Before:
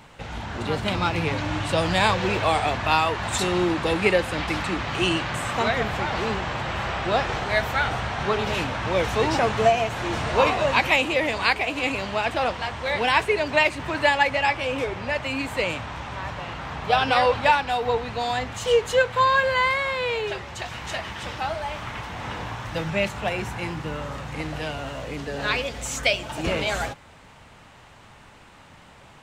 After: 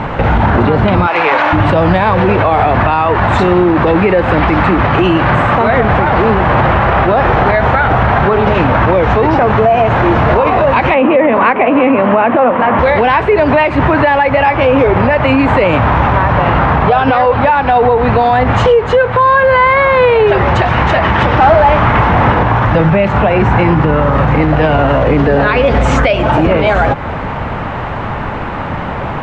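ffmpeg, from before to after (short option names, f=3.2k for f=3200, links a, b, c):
-filter_complex "[0:a]asplit=3[a][b][c];[a]afade=t=out:st=1.06:d=0.02[d];[b]highpass=740,afade=t=in:st=1.06:d=0.02,afade=t=out:st=1.52:d=0.02[e];[c]afade=t=in:st=1.52:d=0.02[f];[d][e][f]amix=inputs=3:normalize=0,asettb=1/sr,asplit=3[g][h][i];[g]atrim=end=10.944[j];[h]atrim=start=10.94:end=12.79,asetpts=PTS-STARTPTS,afade=t=in:d=0.004:c=qsin,afade=t=out:st=1.846:d=0.004:c=qsin,highpass=f=130:w=0.5412,highpass=f=130:w=1.3066,equalizer=f=140:t=q:w=4:g=-8,equalizer=f=240:t=q:w=4:g=10,equalizer=f=540:t=q:w=4:g=6,equalizer=f=1.1k:t=q:w=4:g=4,lowpass=f=2.9k:w=0.5412,lowpass=f=2.9k:w=1.3066[k];[i]atrim=start=12.786[l];[j][k]acrossfade=d=0.004:c1=hsin:c2=qsin[m];[m][l]acrossfade=d=0.004:c1=qsin:c2=hsin,asettb=1/sr,asplit=3[n][o][p];[n]atrim=end=21.374[q];[o]atrim=start=21.37:end=22.31,asetpts=PTS-STARTPTS,afade=t=in:d=0.004:c=qsin,afade=t=out:st=0.936:d=0.004:c=qsin,asoftclip=type=hard:threshold=-27.5dB[r];[p]atrim=start=22.306[s];[q][r]acrossfade=d=0.004:c1=hsin:c2=qsin[t];[t][s]acrossfade=d=0.004:c1=qsin:c2=hsin,lowpass=1.5k,acompressor=threshold=-34dB:ratio=6,alimiter=level_in=32.5dB:limit=-1dB:release=50:level=0:latency=1,volume=-1dB"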